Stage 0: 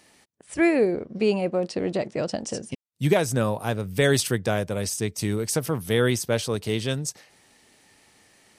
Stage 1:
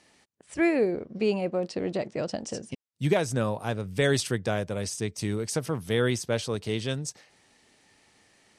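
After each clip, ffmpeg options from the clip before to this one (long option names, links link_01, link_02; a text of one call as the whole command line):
ffmpeg -i in.wav -af "lowpass=8700,volume=-3.5dB" out.wav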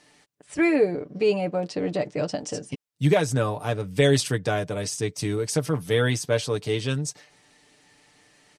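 ffmpeg -i in.wav -af "aecho=1:1:6.8:0.62,volume=2dB" out.wav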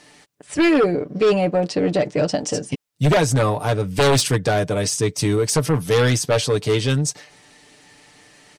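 ffmpeg -i in.wav -af "aeval=exprs='0.501*sin(PI/2*3.16*val(0)/0.501)':channel_layout=same,volume=-5.5dB" out.wav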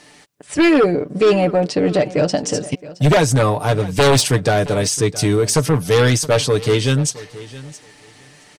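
ffmpeg -i in.wav -af "aecho=1:1:669|1338:0.126|0.0201,volume=3dB" out.wav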